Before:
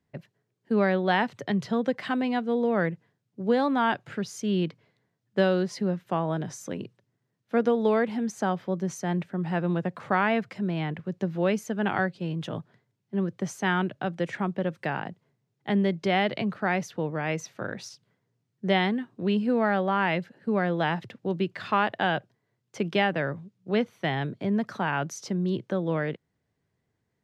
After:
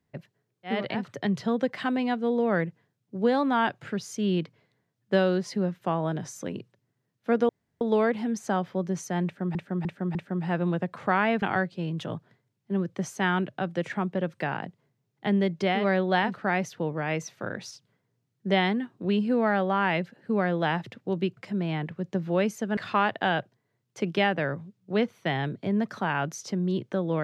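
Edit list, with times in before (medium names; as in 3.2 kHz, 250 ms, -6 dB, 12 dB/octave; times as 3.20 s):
0.75–1.26 s: swap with 16.22–16.48 s, crossfade 0.24 s
7.74 s: insert room tone 0.32 s
9.18–9.48 s: loop, 4 plays
10.45–11.85 s: move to 21.55 s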